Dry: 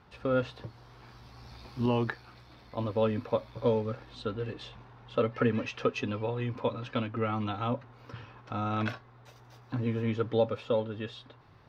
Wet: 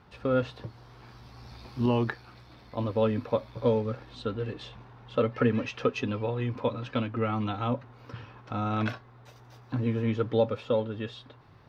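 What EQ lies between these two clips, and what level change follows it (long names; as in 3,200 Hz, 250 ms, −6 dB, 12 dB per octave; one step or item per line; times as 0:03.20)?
parametric band 170 Hz +2 dB 2.7 octaves
+1.0 dB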